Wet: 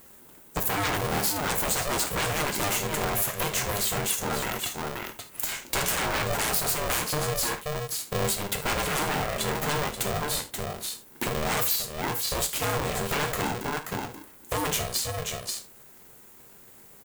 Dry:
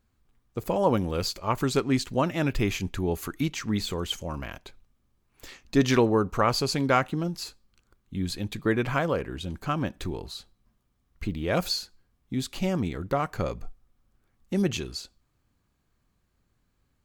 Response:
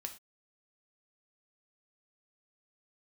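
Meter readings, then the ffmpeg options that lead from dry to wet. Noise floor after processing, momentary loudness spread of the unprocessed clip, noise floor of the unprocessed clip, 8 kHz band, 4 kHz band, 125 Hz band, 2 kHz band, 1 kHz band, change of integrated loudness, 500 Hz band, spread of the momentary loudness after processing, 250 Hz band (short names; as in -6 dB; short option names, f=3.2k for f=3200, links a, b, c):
-51 dBFS, 14 LU, -73 dBFS, +12.5 dB, +4.0 dB, -3.0 dB, +5.0 dB, +2.0 dB, +0.5 dB, -2.5 dB, 8 LU, -7.5 dB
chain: -filter_complex "[0:a]aecho=1:1:531:0.224,aeval=exprs='0.447*sin(PI/2*8.91*val(0)/0.447)':c=same,highpass=f=160:p=1,aexciter=amount=3.1:drive=7.9:freq=7.2k,equalizer=f=3.6k:t=o:w=0.77:g=-2.5,acompressor=threshold=-25dB:ratio=3,equalizer=f=350:t=o:w=0.23:g=-6[a];[1:a]atrim=start_sample=2205,atrim=end_sample=3969[b];[a][b]afir=irnorm=-1:irlink=0,aeval=exprs='val(0)*sgn(sin(2*PI*300*n/s))':c=same,volume=-1dB"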